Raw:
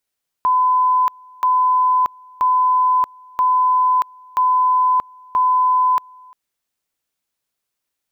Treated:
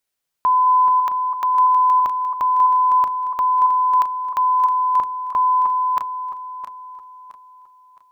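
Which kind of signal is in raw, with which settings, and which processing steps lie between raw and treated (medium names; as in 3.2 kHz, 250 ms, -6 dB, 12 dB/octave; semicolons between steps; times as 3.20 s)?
two-level tone 1.01 kHz -12 dBFS, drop 28 dB, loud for 0.63 s, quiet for 0.35 s, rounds 6
backward echo that repeats 333 ms, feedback 59%, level -7 dB; hum notches 60/120/180/240/300/360/420/480 Hz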